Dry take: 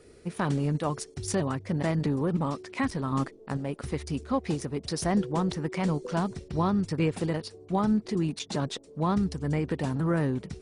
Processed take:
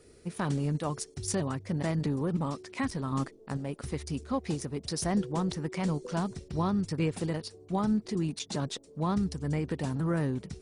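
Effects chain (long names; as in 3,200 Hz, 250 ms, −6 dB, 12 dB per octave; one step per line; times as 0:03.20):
bass and treble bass +2 dB, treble +5 dB
level −4 dB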